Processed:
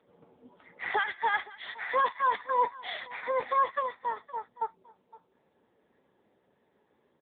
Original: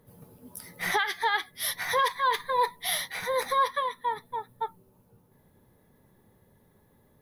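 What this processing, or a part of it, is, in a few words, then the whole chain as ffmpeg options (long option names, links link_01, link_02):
satellite phone: -filter_complex "[0:a]asplit=3[link_01][link_02][link_03];[link_01]afade=type=out:start_time=3.62:duration=0.02[link_04];[link_02]aecho=1:1:1.5:0.32,afade=type=in:start_time=3.62:duration=0.02,afade=type=out:start_time=4.53:duration=0.02[link_05];[link_03]afade=type=in:start_time=4.53:duration=0.02[link_06];[link_04][link_05][link_06]amix=inputs=3:normalize=0,highpass=310,lowpass=3400,aecho=1:1:516:0.1" -ar 8000 -c:a libopencore_amrnb -b:a 6700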